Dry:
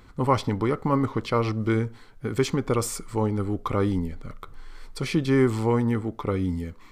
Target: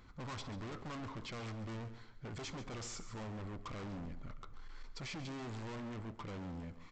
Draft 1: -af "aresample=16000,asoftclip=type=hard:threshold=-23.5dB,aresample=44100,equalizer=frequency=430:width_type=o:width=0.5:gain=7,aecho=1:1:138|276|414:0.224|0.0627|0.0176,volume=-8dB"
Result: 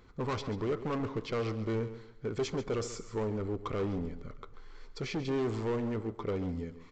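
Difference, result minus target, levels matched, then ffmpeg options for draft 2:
500 Hz band +5.5 dB; hard clipping: distortion −6 dB
-af "aresample=16000,asoftclip=type=hard:threshold=-34.5dB,aresample=44100,equalizer=frequency=430:width_type=o:width=0.5:gain=-4,aecho=1:1:138|276|414:0.224|0.0627|0.0176,volume=-8dB"

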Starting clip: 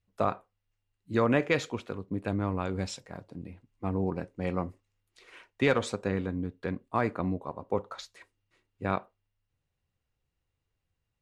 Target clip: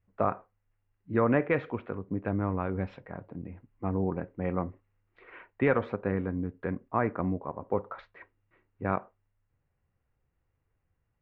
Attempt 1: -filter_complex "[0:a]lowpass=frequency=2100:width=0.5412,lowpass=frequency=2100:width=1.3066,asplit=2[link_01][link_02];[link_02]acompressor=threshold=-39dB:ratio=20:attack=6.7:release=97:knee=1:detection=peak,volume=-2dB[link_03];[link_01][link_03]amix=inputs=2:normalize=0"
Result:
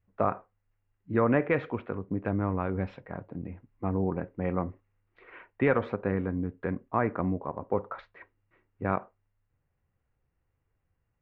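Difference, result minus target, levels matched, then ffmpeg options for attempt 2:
downward compressor: peak gain reduction −9.5 dB
-filter_complex "[0:a]lowpass=frequency=2100:width=0.5412,lowpass=frequency=2100:width=1.3066,asplit=2[link_01][link_02];[link_02]acompressor=threshold=-49dB:ratio=20:attack=6.7:release=97:knee=1:detection=peak,volume=-2dB[link_03];[link_01][link_03]amix=inputs=2:normalize=0"

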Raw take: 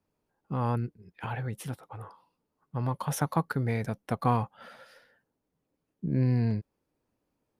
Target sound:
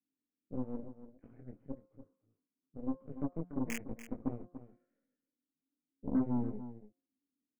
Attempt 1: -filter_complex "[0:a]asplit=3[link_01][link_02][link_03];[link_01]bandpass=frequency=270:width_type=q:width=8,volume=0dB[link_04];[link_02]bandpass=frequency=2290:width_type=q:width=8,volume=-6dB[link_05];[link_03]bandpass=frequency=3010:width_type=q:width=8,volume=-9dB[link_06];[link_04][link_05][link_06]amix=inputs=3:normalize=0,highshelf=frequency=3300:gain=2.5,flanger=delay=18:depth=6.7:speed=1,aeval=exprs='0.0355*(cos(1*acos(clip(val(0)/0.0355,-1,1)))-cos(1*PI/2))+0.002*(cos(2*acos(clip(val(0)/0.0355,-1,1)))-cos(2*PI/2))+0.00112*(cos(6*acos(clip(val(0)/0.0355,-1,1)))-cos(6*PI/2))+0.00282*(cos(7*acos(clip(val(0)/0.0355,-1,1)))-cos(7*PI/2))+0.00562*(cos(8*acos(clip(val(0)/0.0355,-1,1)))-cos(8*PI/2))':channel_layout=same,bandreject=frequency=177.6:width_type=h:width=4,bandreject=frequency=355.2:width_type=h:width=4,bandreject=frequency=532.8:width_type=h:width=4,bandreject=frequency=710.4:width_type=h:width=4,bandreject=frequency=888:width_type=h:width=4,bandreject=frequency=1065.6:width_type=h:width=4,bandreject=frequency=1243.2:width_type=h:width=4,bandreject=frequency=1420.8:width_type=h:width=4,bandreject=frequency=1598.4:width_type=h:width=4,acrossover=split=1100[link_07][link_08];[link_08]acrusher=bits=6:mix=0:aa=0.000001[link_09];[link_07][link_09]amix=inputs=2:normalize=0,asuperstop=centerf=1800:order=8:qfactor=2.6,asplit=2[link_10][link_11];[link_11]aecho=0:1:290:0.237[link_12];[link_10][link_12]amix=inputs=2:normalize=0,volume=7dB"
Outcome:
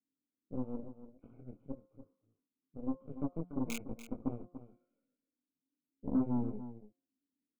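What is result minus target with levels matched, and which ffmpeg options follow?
4,000 Hz band +3.5 dB
-filter_complex "[0:a]asplit=3[link_01][link_02][link_03];[link_01]bandpass=frequency=270:width_type=q:width=8,volume=0dB[link_04];[link_02]bandpass=frequency=2290:width_type=q:width=8,volume=-6dB[link_05];[link_03]bandpass=frequency=3010:width_type=q:width=8,volume=-9dB[link_06];[link_04][link_05][link_06]amix=inputs=3:normalize=0,highshelf=frequency=3300:gain=2.5,flanger=delay=18:depth=6.7:speed=1,aeval=exprs='0.0355*(cos(1*acos(clip(val(0)/0.0355,-1,1)))-cos(1*PI/2))+0.002*(cos(2*acos(clip(val(0)/0.0355,-1,1)))-cos(2*PI/2))+0.00112*(cos(6*acos(clip(val(0)/0.0355,-1,1)))-cos(6*PI/2))+0.00282*(cos(7*acos(clip(val(0)/0.0355,-1,1)))-cos(7*PI/2))+0.00562*(cos(8*acos(clip(val(0)/0.0355,-1,1)))-cos(8*PI/2))':channel_layout=same,bandreject=frequency=177.6:width_type=h:width=4,bandreject=frequency=355.2:width_type=h:width=4,bandreject=frequency=532.8:width_type=h:width=4,bandreject=frequency=710.4:width_type=h:width=4,bandreject=frequency=888:width_type=h:width=4,bandreject=frequency=1065.6:width_type=h:width=4,bandreject=frequency=1243.2:width_type=h:width=4,bandreject=frequency=1420.8:width_type=h:width=4,bandreject=frequency=1598.4:width_type=h:width=4,acrossover=split=1100[link_07][link_08];[link_08]acrusher=bits=6:mix=0:aa=0.000001[link_09];[link_07][link_09]amix=inputs=2:normalize=0,asuperstop=centerf=3900:order=8:qfactor=2.6,asplit=2[link_10][link_11];[link_11]aecho=0:1:290:0.237[link_12];[link_10][link_12]amix=inputs=2:normalize=0,volume=7dB"

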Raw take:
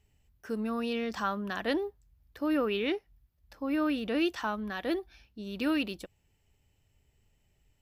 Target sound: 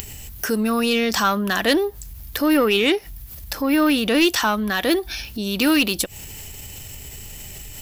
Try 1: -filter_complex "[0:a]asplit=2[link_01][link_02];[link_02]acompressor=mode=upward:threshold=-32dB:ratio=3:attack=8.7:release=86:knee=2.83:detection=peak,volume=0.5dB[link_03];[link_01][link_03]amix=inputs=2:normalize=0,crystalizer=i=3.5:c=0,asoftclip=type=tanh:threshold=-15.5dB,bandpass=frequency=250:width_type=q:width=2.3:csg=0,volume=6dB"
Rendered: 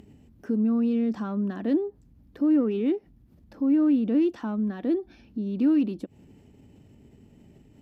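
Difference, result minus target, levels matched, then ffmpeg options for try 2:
250 Hz band +3.5 dB
-filter_complex "[0:a]asplit=2[link_01][link_02];[link_02]acompressor=mode=upward:threshold=-32dB:ratio=3:attack=8.7:release=86:knee=2.83:detection=peak,volume=0.5dB[link_03];[link_01][link_03]amix=inputs=2:normalize=0,crystalizer=i=3.5:c=0,asoftclip=type=tanh:threshold=-15.5dB,volume=6dB"

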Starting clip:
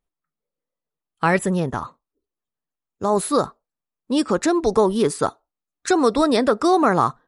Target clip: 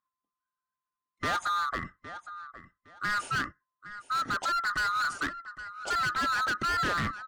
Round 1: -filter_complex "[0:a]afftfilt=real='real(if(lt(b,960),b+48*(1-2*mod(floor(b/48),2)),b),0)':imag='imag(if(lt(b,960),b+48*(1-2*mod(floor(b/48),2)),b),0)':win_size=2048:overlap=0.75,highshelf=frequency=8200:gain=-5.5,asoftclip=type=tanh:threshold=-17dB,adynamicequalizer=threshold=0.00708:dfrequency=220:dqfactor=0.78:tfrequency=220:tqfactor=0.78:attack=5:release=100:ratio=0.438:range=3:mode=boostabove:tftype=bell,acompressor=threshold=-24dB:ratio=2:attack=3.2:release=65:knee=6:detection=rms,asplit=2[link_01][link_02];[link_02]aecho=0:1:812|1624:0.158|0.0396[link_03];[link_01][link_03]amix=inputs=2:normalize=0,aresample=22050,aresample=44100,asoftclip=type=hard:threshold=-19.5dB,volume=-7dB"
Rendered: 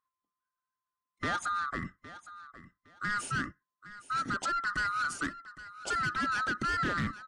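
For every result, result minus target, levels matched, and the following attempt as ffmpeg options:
downward compressor: peak gain reduction +5 dB; 250 Hz band +5.0 dB; 8,000 Hz band +2.0 dB
-filter_complex "[0:a]afftfilt=real='real(if(lt(b,960),b+48*(1-2*mod(floor(b/48),2)),b),0)':imag='imag(if(lt(b,960),b+48*(1-2*mod(floor(b/48),2)),b),0)':win_size=2048:overlap=0.75,highshelf=frequency=8200:gain=-5.5,asoftclip=type=tanh:threshold=-17dB,adynamicequalizer=threshold=0.00708:dfrequency=220:dqfactor=0.78:tfrequency=220:tqfactor=0.78:attack=5:release=100:ratio=0.438:range=3:mode=boostabove:tftype=bell,asplit=2[link_01][link_02];[link_02]aecho=0:1:812|1624:0.158|0.0396[link_03];[link_01][link_03]amix=inputs=2:normalize=0,aresample=22050,aresample=44100,asoftclip=type=hard:threshold=-19.5dB,volume=-7dB"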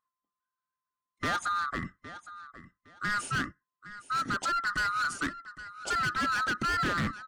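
250 Hz band +4.5 dB; 8,000 Hz band +2.0 dB
-filter_complex "[0:a]afftfilt=real='real(if(lt(b,960),b+48*(1-2*mod(floor(b/48),2)),b),0)':imag='imag(if(lt(b,960),b+48*(1-2*mod(floor(b/48),2)),b),0)':win_size=2048:overlap=0.75,highshelf=frequency=8200:gain=-5.5,asoftclip=type=tanh:threshold=-17dB,adynamicequalizer=threshold=0.00708:dfrequency=790:dqfactor=0.78:tfrequency=790:tqfactor=0.78:attack=5:release=100:ratio=0.438:range=3:mode=boostabove:tftype=bell,asplit=2[link_01][link_02];[link_02]aecho=0:1:812|1624:0.158|0.0396[link_03];[link_01][link_03]amix=inputs=2:normalize=0,aresample=22050,aresample=44100,asoftclip=type=hard:threshold=-19.5dB,volume=-7dB"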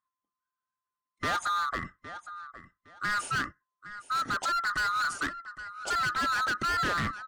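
8,000 Hz band +2.0 dB
-filter_complex "[0:a]afftfilt=real='real(if(lt(b,960),b+48*(1-2*mod(floor(b/48),2)),b),0)':imag='imag(if(lt(b,960),b+48*(1-2*mod(floor(b/48),2)),b),0)':win_size=2048:overlap=0.75,highshelf=frequency=8200:gain=-16,asoftclip=type=tanh:threshold=-17dB,adynamicequalizer=threshold=0.00708:dfrequency=790:dqfactor=0.78:tfrequency=790:tqfactor=0.78:attack=5:release=100:ratio=0.438:range=3:mode=boostabove:tftype=bell,asplit=2[link_01][link_02];[link_02]aecho=0:1:812|1624:0.158|0.0396[link_03];[link_01][link_03]amix=inputs=2:normalize=0,aresample=22050,aresample=44100,asoftclip=type=hard:threshold=-19.5dB,volume=-7dB"

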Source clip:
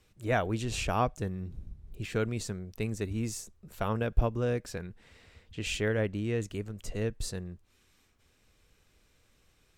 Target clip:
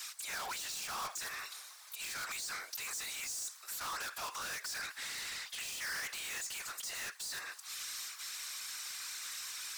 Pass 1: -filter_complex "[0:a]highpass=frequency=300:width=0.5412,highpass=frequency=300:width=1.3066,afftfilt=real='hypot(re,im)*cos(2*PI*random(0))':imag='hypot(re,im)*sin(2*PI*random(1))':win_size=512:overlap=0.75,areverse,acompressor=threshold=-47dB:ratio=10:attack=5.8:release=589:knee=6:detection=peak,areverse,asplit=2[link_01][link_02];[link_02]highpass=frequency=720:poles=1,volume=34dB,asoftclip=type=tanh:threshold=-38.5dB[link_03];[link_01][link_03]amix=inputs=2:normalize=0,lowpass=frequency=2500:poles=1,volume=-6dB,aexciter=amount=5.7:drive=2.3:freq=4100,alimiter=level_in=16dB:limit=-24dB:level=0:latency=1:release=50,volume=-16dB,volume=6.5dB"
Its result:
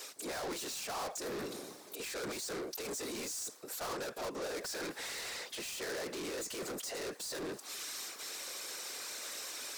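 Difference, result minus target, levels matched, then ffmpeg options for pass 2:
250 Hz band +19.0 dB
-filter_complex "[0:a]highpass=frequency=1100:width=0.5412,highpass=frequency=1100:width=1.3066,afftfilt=real='hypot(re,im)*cos(2*PI*random(0))':imag='hypot(re,im)*sin(2*PI*random(1))':win_size=512:overlap=0.75,areverse,acompressor=threshold=-47dB:ratio=10:attack=5.8:release=589:knee=6:detection=peak,areverse,asplit=2[link_01][link_02];[link_02]highpass=frequency=720:poles=1,volume=34dB,asoftclip=type=tanh:threshold=-38.5dB[link_03];[link_01][link_03]amix=inputs=2:normalize=0,lowpass=frequency=2500:poles=1,volume=-6dB,aexciter=amount=5.7:drive=2.3:freq=4100,alimiter=level_in=16dB:limit=-24dB:level=0:latency=1:release=50,volume=-16dB,volume=6.5dB"

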